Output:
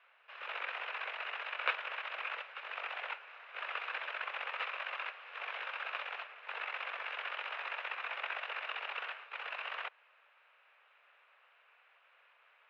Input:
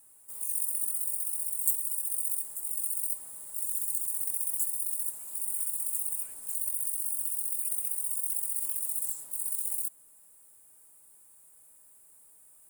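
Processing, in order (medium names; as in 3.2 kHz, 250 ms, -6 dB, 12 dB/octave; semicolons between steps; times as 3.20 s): comb filter that takes the minimum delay 0.82 ms; mistuned SSB +160 Hz 360–2600 Hz; tilt EQ +2.5 dB/octave; trim +4.5 dB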